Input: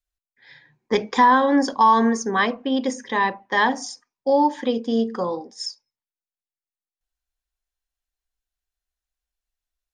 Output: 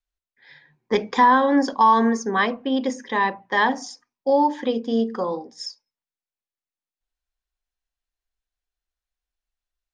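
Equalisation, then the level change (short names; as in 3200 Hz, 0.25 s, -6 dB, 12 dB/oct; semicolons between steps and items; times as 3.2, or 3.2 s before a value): air absorption 59 m; notches 60/120/180/240/300 Hz; 0.0 dB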